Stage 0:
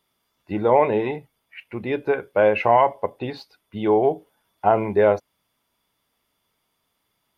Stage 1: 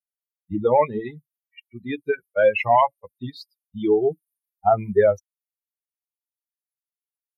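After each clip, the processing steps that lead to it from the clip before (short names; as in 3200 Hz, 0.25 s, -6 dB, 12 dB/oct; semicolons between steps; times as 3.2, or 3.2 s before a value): per-bin expansion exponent 3; gain +4.5 dB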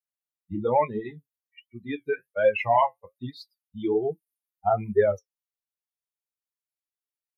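flange 1.2 Hz, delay 7.5 ms, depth 5.3 ms, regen -50%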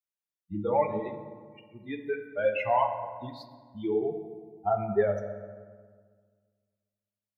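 reverb RT60 1.7 s, pre-delay 5 ms, DRR 5.5 dB; gain -5 dB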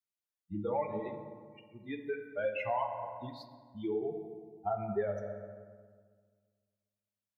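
compressor 2:1, threshold -29 dBFS, peak gain reduction 6 dB; gain -3.5 dB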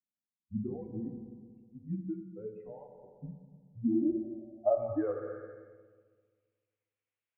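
mistuned SSB -100 Hz 220–3600 Hz; low-pass sweep 230 Hz -> 2400 Hz, 3.77–5.81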